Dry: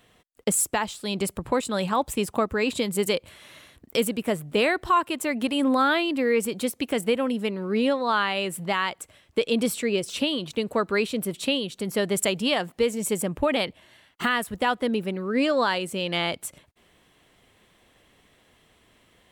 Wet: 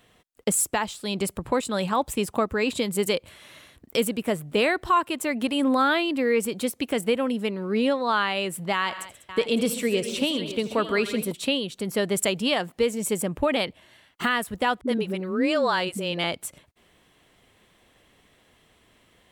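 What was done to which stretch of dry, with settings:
0:08.73–0:11.32: multi-tap delay 82/133/196/558 ms −17/−15/−15.5/−13 dB
0:14.81–0:16.24: all-pass dispersion highs, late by 67 ms, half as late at 300 Hz

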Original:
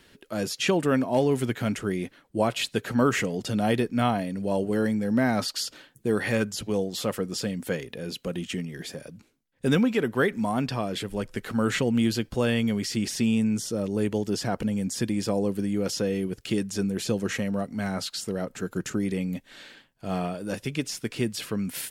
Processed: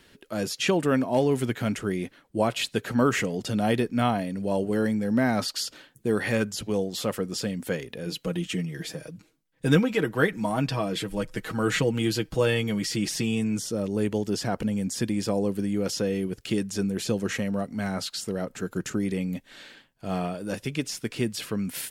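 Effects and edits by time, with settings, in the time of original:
0:08.06–0:13.59: comb filter 6.3 ms

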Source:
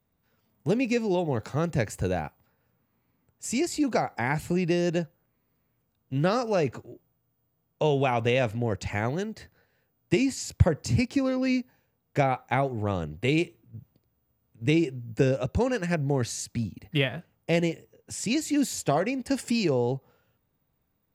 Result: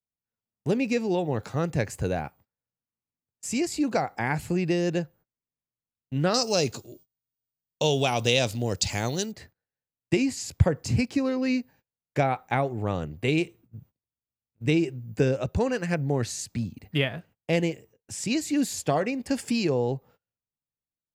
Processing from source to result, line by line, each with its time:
0:06.34–0:09.32: high shelf with overshoot 2,900 Hz +14 dB, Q 1.5
whole clip: noise gate −52 dBFS, range −26 dB

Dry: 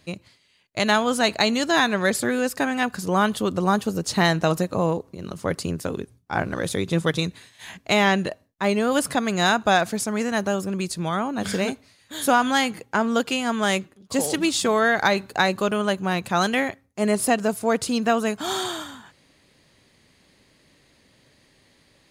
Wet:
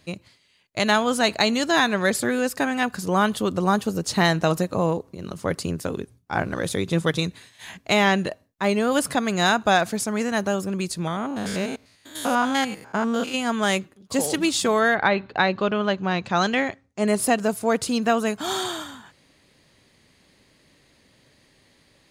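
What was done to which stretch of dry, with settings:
0:11.07–0:13.35: spectrum averaged block by block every 100 ms
0:14.94–0:17.06: low-pass filter 3,200 Hz → 8,600 Hz 24 dB per octave

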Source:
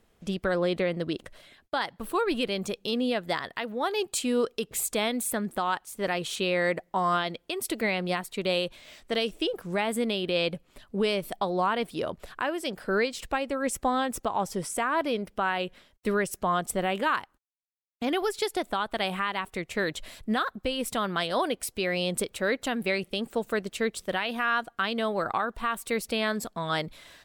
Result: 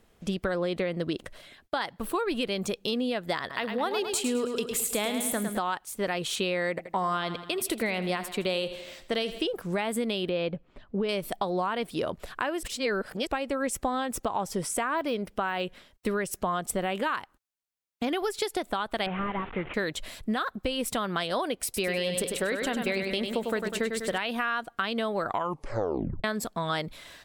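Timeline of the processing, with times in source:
0:03.39–0:05.59: repeating echo 106 ms, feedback 48%, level −7.5 dB
0:06.69–0:09.46: repeating echo 81 ms, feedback 55%, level −15 dB
0:10.29–0:11.09: head-to-tape spacing loss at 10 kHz 28 dB
0:12.63–0:13.27: reverse
0:14.97–0:15.61: de-essing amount 95%
0:19.06–0:19.74: linear delta modulator 16 kbit/s, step −38 dBFS
0:21.64–0:24.18: repeating echo 99 ms, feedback 50%, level −6 dB
0:25.26: tape stop 0.98 s
whole clip: downward compressor, threshold −28 dBFS; level +3 dB

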